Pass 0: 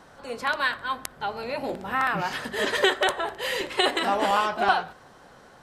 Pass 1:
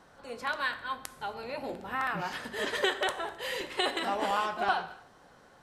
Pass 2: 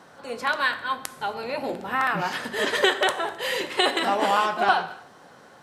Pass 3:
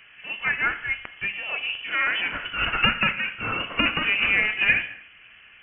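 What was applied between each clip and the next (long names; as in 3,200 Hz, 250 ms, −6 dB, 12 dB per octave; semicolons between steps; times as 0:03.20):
reverb whose tail is shaped and stops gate 300 ms falling, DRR 11.5 dB; level −7 dB
high-pass filter 120 Hz 12 dB per octave; level +8 dB
voice inversion scrambler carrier 3,200 Hz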